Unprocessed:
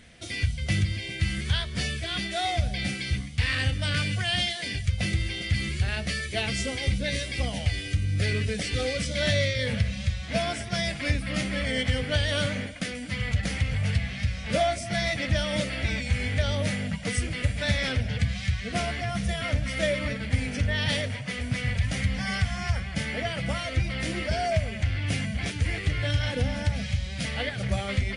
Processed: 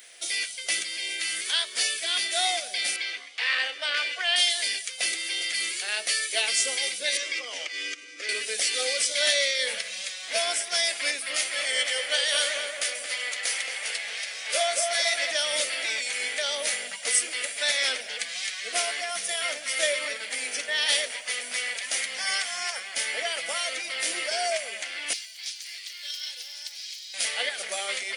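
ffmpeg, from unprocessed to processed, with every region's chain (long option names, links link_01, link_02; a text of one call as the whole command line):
ffmpeg -i in.wav -filter_complex "[0:a]asettb=1/sr,asplit=3[link_01][link_02][link_03];[link_01]atrim=end=2.964[link_04];[link_02]atrim=start=2.96:end=4.36,asetpts=PTS-STARTPTS,afade=type=in:duration=0.004:curve=qsin,afade=type=out:start_time=1.396:duration=0.004:curve=qsin,highpass=350,lowpass=3500,equalizer=frequency=890:width_type=o:width=1.7:gain=3[link_05];[link_03]atrim=start=4.356[link_06];[link_04][link_05]acrossfade=duration=0.004:curve1=hsin:curve2=qsin[link_07];[link_07][link_06]acrossfade=duration=0.004:curve1=qsin:curve2=hsin,asettb=1/sr,asplit=3[link_08][link_09][link_10];[link_08]atrim=end=7.174[link_11];[link_09]atrim=start=7.17:end=8.29,asetpts=PTS-STARTPTS,afade=type=in:duration=0.004:curve=qsin,afade=type=out:start_time=1.116:duration=0.004:curve=qsin,acompressor=threshold=-28dB:ratio=6:attack=3.2:release=140:knee=1:detection=peak,highpass=frequency=220:width=0.5412,highpass=frequency=220:width=1.3066,equalizer=frequency=310:width_type=q:width=4:gain=7,equalizer=frequency=490:width_type=q:width=4:gain=3,equalizer=frequency=740:width_type=q:width=4:gain=-7,equalizer=frequency=1200:width_type=q:width=4:gain=8,equalizer=frequency=2200:width_type=q:width=4:gain=4,equalizer=frequency=4100:width_type=q:width=4:gain=-6,lowpass=frequency=6500:width=0.5412,lowpass=frequency=6500:width=1.3066[link_12];[link_10]atrim=start=8.286[link_13];[link_11][link_12]acrossfade=duration=0.004:curve1=hsin:curve2=qsin[link_14];[link_14][link_13]acrossfade=duration=0.004:curve1=qsin:curve2=hsin,asettb=1/sr,asplit=3[link_15][link_16][link_17];[link_15]atrim=end=11.364[link_18];[link_16]atrim=start=11.36:end=15.31,asetpts=PTS-STARTPTS,afade=type=in:duration=0.004:curve=qsin,afade=type=out:start_time=3.946:duration=0.004:curve=qsin,equalizer=frequency=140:width=0.49:gain=-10.5,asplit=2[link_19][link_20];[link_20]adelay=224,lowpass=frequency=2100:poles=1,volume=-4dB,asplit=2[link_21][link_22];[link_22]adelay=224,lowpass=frequency=2100:poles=1,volume=0.53,asplit=2[link_23][link_24];[link_24]adelay=224,lowpass=frequency=2100:poles=1,volume=0.53,asplit=2[link_25][link_26];[link_26]adelay=224,lowpass=frequency=2100:poles=1,volume=0.53,asplit=2[link_27][link_28];[link_28]adelay=224,lowpass=frequency=2100:poles=1,volume=0.53,asplit=2[link_29][link_30];[link_30]adelay=224,lowpass=frequency=2100:poles=1,volume=0.53,asplit=2[link_31][link_32];[link_32]adelay=224,lowpass=frequency=2100:poles=1,volume=0.53[link_33];[link_19][link_21][link_23][link_25][link_27][link_29][link_31][link_33]amix=inputs=8:normalize=0,atrim=end_sample=174195[link_34];[link_17]atrim=start=15.306[link_35];[link_18][link_34]acrossfade=duration=0.004:curve1=hsin:curve2=qsin[link_36];[link_36][link_35]acrossfade=duration=0.004:curve1=qsin:curve2=hsin,asettb=1/sr,asplit=3[link_37][link_38][link_39];[link_37]atrim=end=25.134[link_40];[link_38]atrim=start=25.13:end=27.14,asetpts=PTS-STARTPTS,afade=type=in:duration=0.004:curve=qsin,afade=type=out:start_time=2.006:duration=0.004:curve=qsin,acrusher=bits=7:mode=log:mix=0:aa=0.000001,bandpass=frequency=4700:width_type=q:width=2.4[link_41];[link_39]atrim=start=27.136[link_42];[link_40][link_41]acrossfade=duration=0.004:curve1=hsin:curve2=qsin[link_43];[link_43][link_42]acrossfade=duration=0.004:curve1=qsin:curve2=hsin,highpass=frequency=370:width=0.5412,highpass=frequency=370:width=1.3066,aemphasis=mode=production:type=riaa" out.wav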